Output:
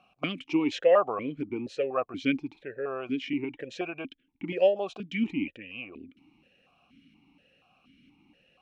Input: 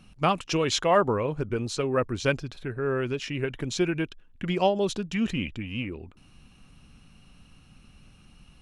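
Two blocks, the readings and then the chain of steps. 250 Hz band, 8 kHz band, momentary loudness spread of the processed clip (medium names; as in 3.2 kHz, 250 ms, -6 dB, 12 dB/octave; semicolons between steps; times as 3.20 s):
-1.0 dB, under -15 dB, 17 LU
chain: stepped vowel filter 4.2 Hz; trim +8.5 dB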